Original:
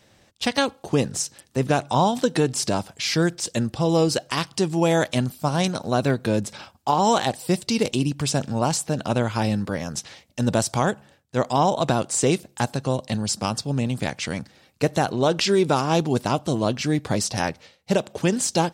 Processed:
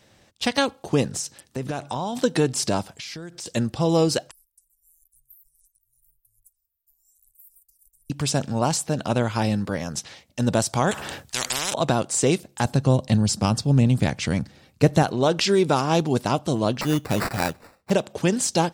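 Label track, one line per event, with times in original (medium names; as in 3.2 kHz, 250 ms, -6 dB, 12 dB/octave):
1.110000	2.180000	compression, threshold -24 dBFS
2.950000	3.460000	compression 16:1, threshold -32 dBFS
4.310000	8.100000	inverse Chebyshev band-stop 170–3200 Hz, stop band 80 dB
10.910000	11.740000	spectrum-flattening compressor 10:1
12.650000	15.030000	bass shelf 250 Hz +10 dB
16.810000	17.910000	sample-rate reducer 3.2 kHz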